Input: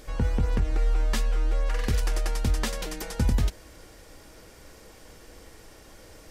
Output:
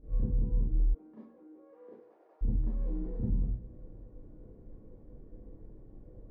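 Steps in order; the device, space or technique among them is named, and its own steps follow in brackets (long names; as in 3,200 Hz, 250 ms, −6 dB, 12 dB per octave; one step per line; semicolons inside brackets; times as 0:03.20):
hum removal 58.6 Hz, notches 36
television next door (downward compressor 5 to 1, threshold −30 dBFS, peak gain reduction 10.5 dB; low-pass filter 260 Hz 12 dB per octave; convolution reverb RT60 0.50 s, pre-delay 31 ms, DRR −9.5 dB)
0:00.93–0:02.41: high-pass filter 200 Hz → 560 Hz 24 dB per octave
level −6.5 dB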